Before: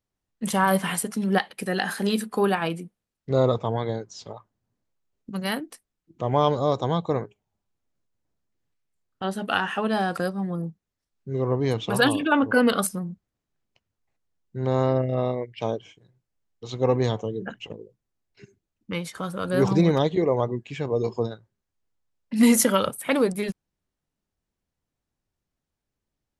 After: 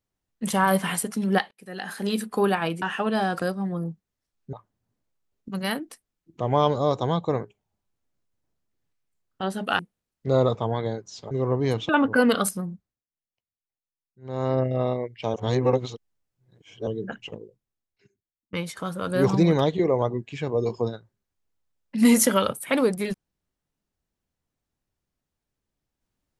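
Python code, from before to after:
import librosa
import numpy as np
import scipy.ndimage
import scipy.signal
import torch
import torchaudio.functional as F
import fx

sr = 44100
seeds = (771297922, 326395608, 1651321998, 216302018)

y = fx.edit(x, sr, fx.fade_in_span(start_s=1.51, length_s=0.77),
    fx.swap(start_s=2.82, length_s=1.52, other_s=9.6, other_length_s=1.71),
    fx.cut(start_s=11.89, length_s=0.38),
    fx.fade_down_up(start_s=13.02, length_s=1.96, db=-21.0, fade_s=0.39),
    fx.reverse_span(start_s=15.72, length_s=1.53),
    fx.fade_out_to(start_s=17.75, length_s=1.16, curve='qua', floor_db=-23.5), tone=tone)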